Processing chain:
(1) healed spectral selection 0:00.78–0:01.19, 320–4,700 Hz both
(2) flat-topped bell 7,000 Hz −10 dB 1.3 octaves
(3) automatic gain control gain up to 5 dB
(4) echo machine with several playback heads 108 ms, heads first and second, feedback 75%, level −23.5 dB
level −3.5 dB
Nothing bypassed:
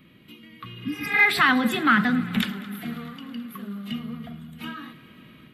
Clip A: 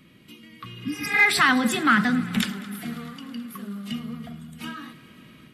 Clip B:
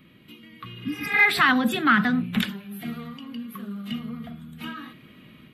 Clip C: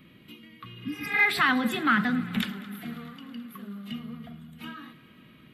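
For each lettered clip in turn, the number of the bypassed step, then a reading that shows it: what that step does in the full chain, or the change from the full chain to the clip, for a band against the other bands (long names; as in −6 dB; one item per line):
2, 8 kHz band +9.0 dB
4, echo-to-direct ratio −16.0 dB to none audible
3, change in integrated loudness −4.0 LU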